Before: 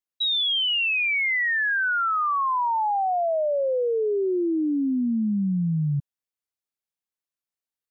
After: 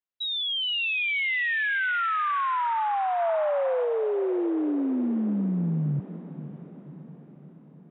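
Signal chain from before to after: low-pass 3.5 kHz; echo that smears into a reverb 548 ms, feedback 58%, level -14 dB; 3.19–3.85 s: dynamic bell 1.4 kHz, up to +4 dB, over -37 dBFS, Q 0.93; trim -2.5 dB

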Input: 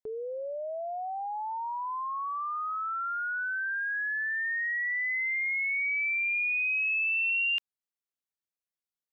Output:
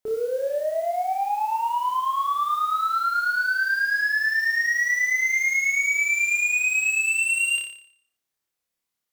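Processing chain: sine folder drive 4 dB, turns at -24 dBFS; modulation noise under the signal 25 dB; flutter echo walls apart 5 m, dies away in 0.6 s

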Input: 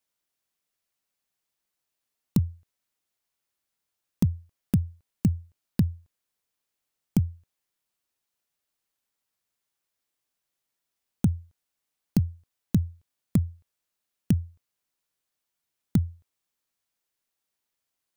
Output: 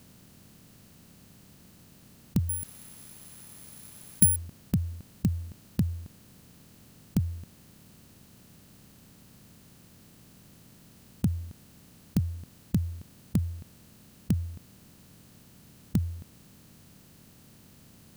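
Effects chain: spectral levelling over time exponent 0.4; 2.49–4.36 s: careless resampling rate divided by 4×, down none, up zero stuff; trim -5.5 dB

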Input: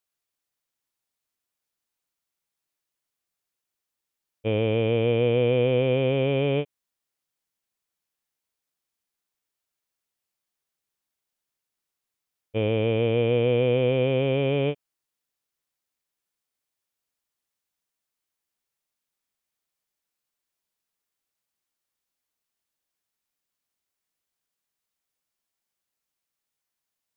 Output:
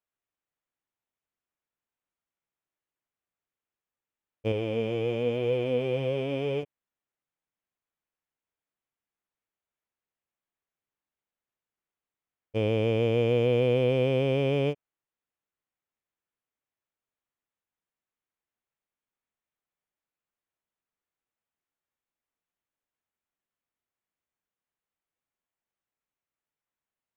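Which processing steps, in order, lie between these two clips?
local Wiener filter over 9 samples; 4.52–6.63 s: flange 1 Hz, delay 1.9 ms, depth 4.6 ms, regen +39%; trim -2 dB

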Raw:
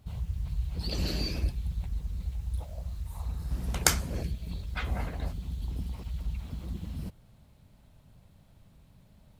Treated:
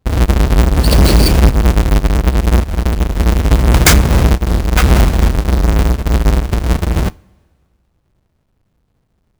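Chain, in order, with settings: square wave that keeps the level; waveshaping leveller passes 5; two-slope reverb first 0.34 s, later 2 s, from -18 dB, DRR 19 dB

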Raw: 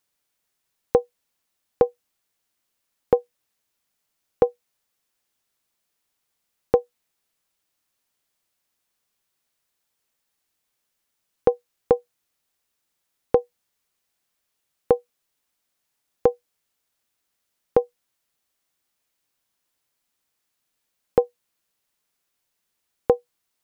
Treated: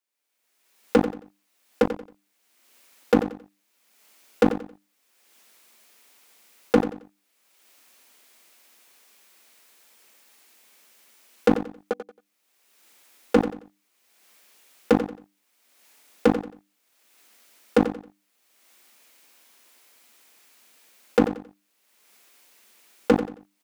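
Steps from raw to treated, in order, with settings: recorder AGC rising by 32 dB/s; elliptic high-pass 210 Hz, stop band 40 dB; peaking EQ 2.3 kHz +4 dB 0.53 oct; hum notches 50/100/150/200/250/300 Hz; waveshaping leveller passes 5; slow attack 364 ms; feedback delay 90 ms, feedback 28%, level -11 dB

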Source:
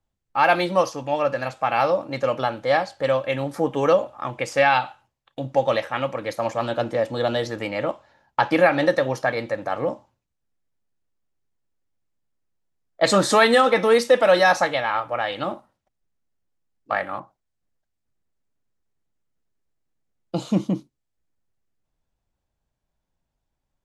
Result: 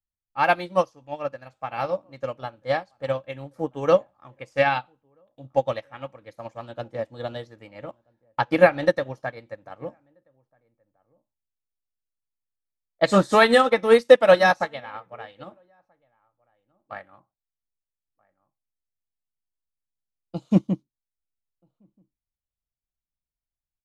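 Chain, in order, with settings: bass shelf 140 Hz +11 dB; echo from a far wall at 220 m, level -18 dB; upward expansion 2.5:1, over -29 dBFS; trim +4.5 dB

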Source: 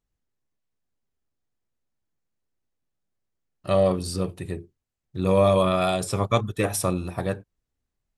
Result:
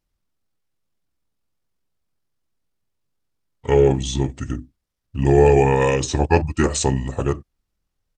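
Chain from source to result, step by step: pitch shift -5.5 st; trim +5.5 dB

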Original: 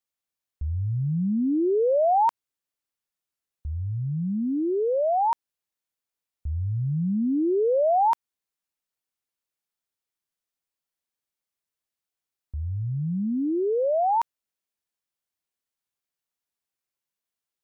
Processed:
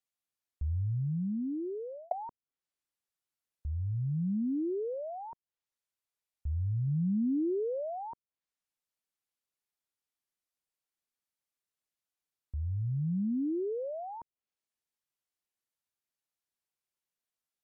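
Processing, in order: 0.72–2.11 s: fade out; low-pass that closes with the level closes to 330 Hz, closed at -24 dBFS; 4.94–6.88 s: peaking EQ 260 Hz -4.5 dB 0.87 oct; trim -4 dB

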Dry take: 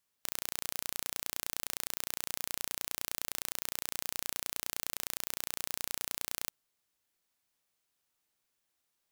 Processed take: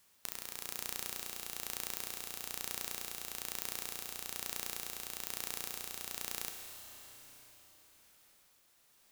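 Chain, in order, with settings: compression 12:1, threshold -45 dBFS, peak gain reduction 16 dB; tremolo 1.1 Hz, depth 43%; plate-style reverb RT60 4.7 s, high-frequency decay 0.95×, pre-delay 0 ms, DRR 3 dB; trim +13.5 dB

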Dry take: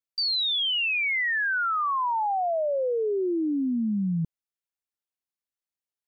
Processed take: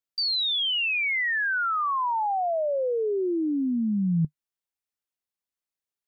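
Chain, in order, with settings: dynamic bell 150 Hz, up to +6 dB, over -45 dBFS, Q 3.6

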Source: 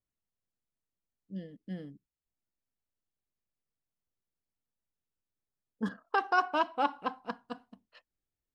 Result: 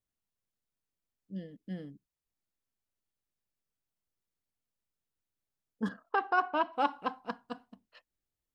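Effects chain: 6.09–6.73 s: distance through air 220 m

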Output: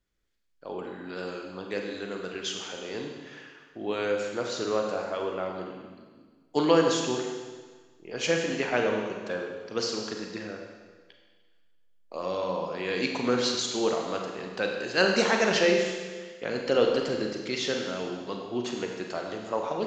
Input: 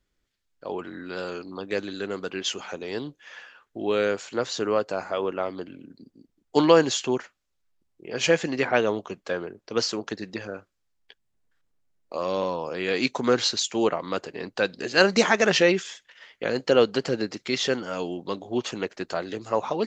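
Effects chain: Schroeder reverb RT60 1.5 s, combs from 33 ms, DRR 1.5 dB; trim -5.5 dB

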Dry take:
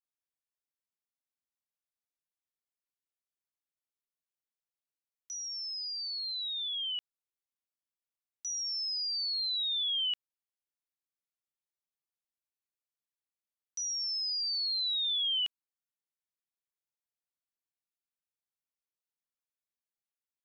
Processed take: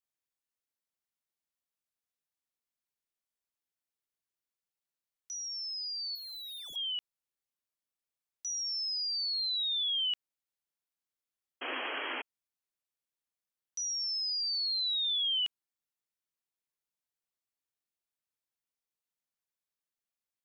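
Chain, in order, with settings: 6.15–6.76 s: median filter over 15 samples; 11.61–12.22 s: painted sound noise 240–3300 Hz -37 dBFS

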